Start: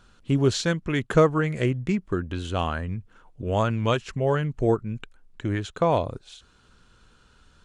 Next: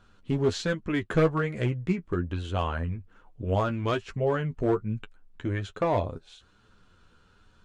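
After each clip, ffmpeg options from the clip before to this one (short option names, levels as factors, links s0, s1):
-af "volume=5.96,asoftclip=hard,volume=0.168,highshelf=f=4800:g=-9,flanger=delay=9.3:depth=3:regen=26:speed=1.2:shape=sinusoidal,volume=1.19"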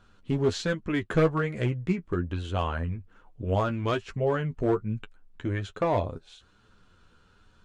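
-af anull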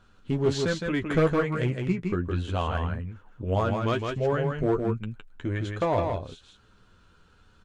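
-af "aecho=1:1:162:0.596"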